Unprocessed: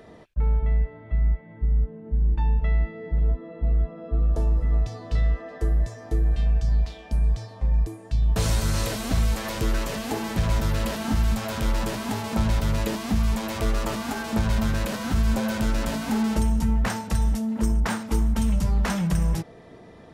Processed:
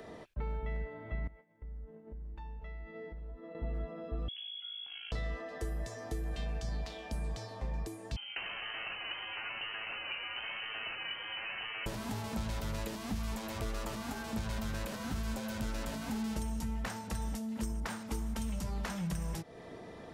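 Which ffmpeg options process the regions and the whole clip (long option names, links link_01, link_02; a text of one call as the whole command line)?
ffmpeg -i in.wav -filter_complex "[0:a]asettb=1/sr,asplit=3[link_01][link_02][link_03];[link_01]atrim=end=1.274[link_04];[link_02]atrim=start=1.27:end=3.55,asetpts=PTS-STARTPTS,afade=type=in:duration=0.004:curve=qsin,afade=type=out:start_time=2.276:duration=0.004:curve=qsin,equalizer=frequency=100:width_type=o:width=1.8:gain=-7,agate=range=-33dB:threshold=-36dB:ratio=3:release=100:detection=peak,acompressor=threshold=-40dB:ratio=5:attack=3.2:release=140:knee=1:detection=peak[link_05];[link_03]atrim=start=3.546[link_06];[link_04][link_05]acrossfade=duration=0.004:curve1=hsin:curve2=qsin[link_07];[link_07][link_06]acrossfade=duration=0.004:curve1=qsin:curve2=hsin,asettb=1/sr,asplit=3[link_08][link_09][link_10];[link_08]atrim=end=4.284[link_11];[link_09]atrim=start=4.28:end=5.12,asetpts=PTS-STARTPTS,afade=type=in:duration=0.004:curve=qsin,afade=type=out:start_time=0.836:duration=0.004:curve=qsin,acompressor=threshold=-32dB:ratio=10:attack=3.2:release=140:knee=1:detection=peak,aeval=exprs='val(0)*sin(2*PI*27*n/s)':channel_layout=same,lowpass=frequency=2900:width_type=q:width=0.5098,lowpass=frequency=2900:width_type=q:width=0.6013,lowpass=frequency=2900:width_type=q:width=0.9,lowpass=frequency=2900:width_type=q:width=2.563,afreqshift=-3400[link_12];[link_10]atrim=start=5.116[link_13];[link_11][link_12]acrossfade=duration=0.004:curve1=hsin:curve2=qsin[link_14];[link_14][link_13]acrossfade=duration=0.004:curve1=qsin:curve2=hsin,asettb=1/sr,asplit=3[link_15][link_16][link_17];[link_15]atrim=end=8.164[link_18];[link_16]atrim=start=8.16:end=11.86,asetpts=PTS-STARTPTS,afade=type=in:duration=0.004:curve=qsin,afade=type=out:start_time=3.696:duration=0.004:curve=qsin,highpass=240,lowpass=frequency=2700:width_type=q:width=0.5098,lowpass=frequency=2700:width_type=q:width=0.6013,lowpass=frequency=2700:width_type=q:width=0.9,lowpass=frequency=2700:width_type=q:width=2.563,afreqshift=-3200[link_19];[link_17]atrim=start=11.856[link_20];[link_18][link_19]acrossfade=duration=0.004:curve1=hsin:curve2=qsin[link_21];[link_21][link_20]acrossfade=duration=0.004:curve1=qsin:curve2=hsin,bass=frequency=250:gain=-4,treble=frequency=4000:gain=1,acrossover=split=150|2200[link_22][link_23][link_24];[link_22]acompressor=threshold=-38dB:ratio=4[link_25];[link_23]acompressor=threshold=-42dB:ratio=4[link_26];[link_24]acompressor=threshold=-48dB:ratio=4[link_27];[link_25][link_26][link_27]amix=inputs=3:normalize=0" out.wav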